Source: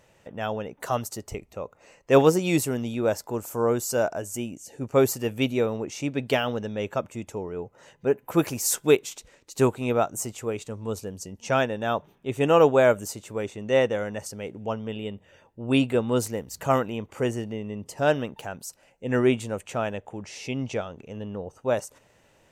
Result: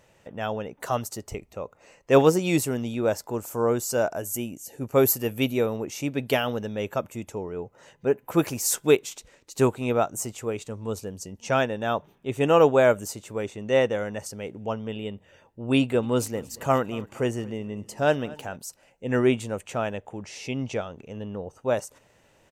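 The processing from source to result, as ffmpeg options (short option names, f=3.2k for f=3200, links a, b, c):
-filter_complex "[0:a]asettb=1/sr,asplit=3[a][b][c];[a]atrim=end=4.114[d];[b]atrim=start=4.11:end=7.29,asetpts=PTS-STARTPTS,afade=t=in:d=0.004:c=qsin,afade=t=out:st=3.176:d=0.004:c=qsin,equalizer=f=12k:w=2.1:g=13.5[e];[c]atrim=start=7.286[f];[d][e]acrossfade=d=0.004:c1=hsin:c2=qsin[g];[g][f]acrossfade=d=0.004:c1=qsin:c2=hsin,asplit=3[h][i][j];[h]afade=t=out:st=16.02:d=0.02[k];[i]aecho=1:1:229|458|687:0.0841|0.0345|0.0141,afade=t=in:st=16.02:d=0.02,afade=t=out:st=18.55:d=0.02[l];[j]afade=t=in:st=18.55:d=0.02[m];[k][l][m]amix=inputs=3:normalize=0"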